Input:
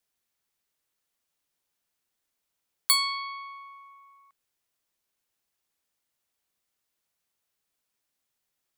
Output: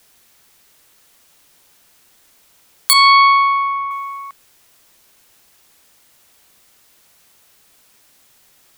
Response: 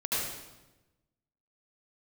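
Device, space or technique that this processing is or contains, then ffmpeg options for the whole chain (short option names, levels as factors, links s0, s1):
loud club master: -filter_complex "[0:a]asettb=1/sr,asplit=3[s0][s1][s2];[s0]atrim=end=2.934[s3];[s1]atrim=start=2.93:end=3.91,asetpts=PTS-STARTPTS,afade=t=in:d=0.004:c=qsin,afade=t=out:st=0.976:d=0.004:c=qsin,aemphasis=mode=reproduction:type=riaa[s4];[s2]atrim=start=3.906[s5];[s3][s4]acrossfade=d=0.004:c1=hsin:c2=qsin[s6];[s6][s5]acrossfade=d=0.004:c1=qsin:c2=hsin,acompressor=threshold=0.0224:ratio=2,asoftclip=type=hard:threshold=0.106,alimiter=level_in=31.6:limit=0.891:release=50:level=0:latency=1,volume=0.794"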